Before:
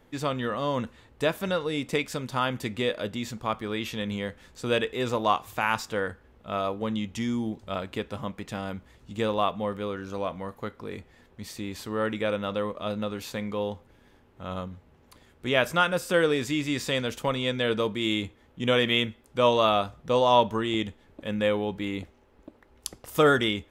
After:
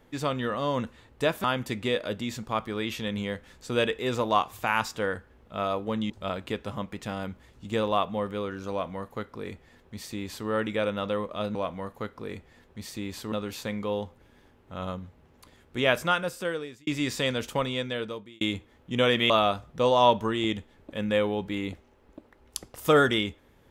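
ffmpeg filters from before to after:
ffmpeg -i in.wav -filter_complex "[0:a]asplit=8[link_01][link_02][link_03][link_04][link_05][link_06][link_07][link_08];[link_01]atrim=end=1.442[link_09];[link_02]atrim=start=2.378:end=7.042[link_10];[link_03]atrim=start=7.558:end=13.012[link_11];[link_04]atrim=start=10.168:end=11.942[link_12];[link_05]atrim=start=13.008:end=16.56,asetpts=PTS-STARTPTS,afade=type=out:start_time=2.592:duration=0.96[link_13];[link_06]atrim=start=16.56:end=18.1,asetpts=PTS-STARTPTS,afade=type=in:duration=0.004:curve=hsin,afade=type=out:start_time=0.68:duration=0.86[link_14];[link_07]atrim=start=18.1:end=18.992,asetpts=PTS-STARTPTS,afade=type=in:duration=0.004:curve=hsin[link_15];[link_08]atrim=start=19.598[link_16];[link_09][link_10]acrossfade=duration=0.004:curve1=hsin:curve2=hsin[link_17];[link_17][link_11]acrossfade=duration=0.004:curve1=hsin:curve2=hsin[link_18];[link_18][link_12]acrossfade=duration=0.004:curve1=hsin:curve2=hsin[link_19];[link_13][link_14][link_15]concat=n=3:v=0:a=1[link_20];[link_19][link_20]acrossfade=duration=0.004:curve1=hsin:curve2=hsin[link_21];[link_21][link_16]acrossfade=duration=0.004:curve1=hsin:curve2=hsin" out.wav

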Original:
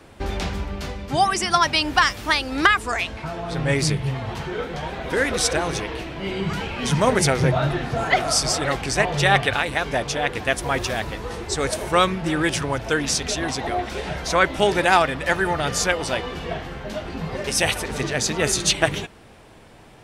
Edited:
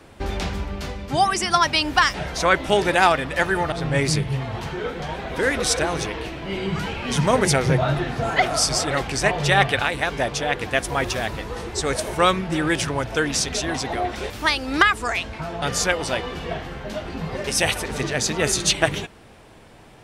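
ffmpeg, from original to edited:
ffmpeg -i in.wav -filter_complex "[0:a]asplit=5[link_01][link_02][link_03][link_04][link_05];[link_01]atrim=end=2.142[link_06];[link_02]atrim=start=14.038:end=15.622[link_07];[link_03]atrim=start=3.458:end=14.042[link_08];[link_04]atrim=start=2.138:end=3.462[link_09];[link_05]atrim=start=15.618[link_10];[link_06][link_07]acrossfade=duration=0.004:curve1=hsin:curve2=hsin[link_11];[link_11][link_08]acrossfade=duration=0.004:curve1=hsin:curve2=hsin[link_12];[link_12][link_09]acrossfade=duration=0.004:curve1=hsin:curve2=hsin[link_13];[link_13][link_10]acrossfade=duration=0.004:curve1=hsin:curve2=hsin" out.wav

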